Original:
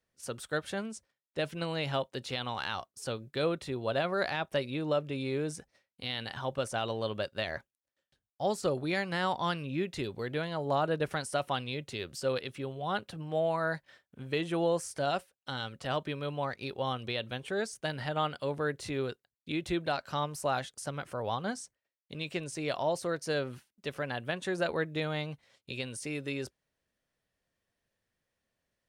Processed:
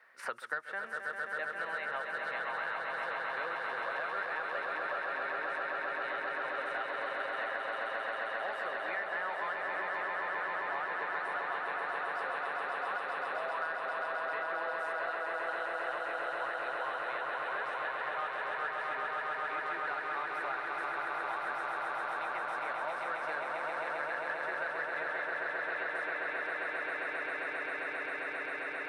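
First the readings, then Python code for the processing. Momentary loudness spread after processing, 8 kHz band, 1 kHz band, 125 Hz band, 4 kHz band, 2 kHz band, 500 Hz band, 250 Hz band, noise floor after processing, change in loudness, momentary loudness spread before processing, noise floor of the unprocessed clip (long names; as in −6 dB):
1 LU, below −15 dB, +2.0 dB, below −25 dB, −10.0 dB, +6.0 dB, −6.5 dB, −16.0 dB, −40 dBFS, −1.5 dB, 9 LU, below −85 dBFS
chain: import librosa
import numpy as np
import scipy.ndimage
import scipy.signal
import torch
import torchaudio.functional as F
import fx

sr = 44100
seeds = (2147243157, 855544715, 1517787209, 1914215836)

p1 = scipy.signal.sosfilt(scipy.signal.butter(2, 1500.0, 'highpass', fs=sr, output='sos'), x)
p2 = fx.band_shelf(p1, sr, hz=4100.0, db=-14.0, octaves=1.7)
p3 = fx.notch(p2, sr, hz=3300.0, q=16.0)
p4 = np.clip(p3, -10.0 ** (-37.0 / 20.0), 10.0 ** (-37.0 / 20.0))
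p5 = p3 + F.gain(torch.from_numpy(p4), -5.5).numpy()
p6 = fx.air_absorb(p5, sr, metres=300.0)
p7 = p6 + fx.echo_swell(p6, sr, ms=133, loudest=8, wet_db=-4.5, dry=0)
y = fx.band_squash(p7, sr, depth_pct=100)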